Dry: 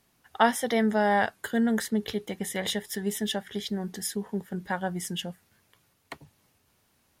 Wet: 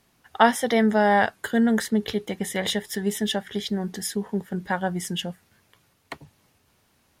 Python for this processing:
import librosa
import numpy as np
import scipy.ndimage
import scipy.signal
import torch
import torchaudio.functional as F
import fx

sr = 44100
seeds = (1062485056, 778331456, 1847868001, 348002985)

y = fx.high_shelf(x, sr, hz=8800.0, db=-5.0)
y = y * 10.0 ** (4.5 / 20.0)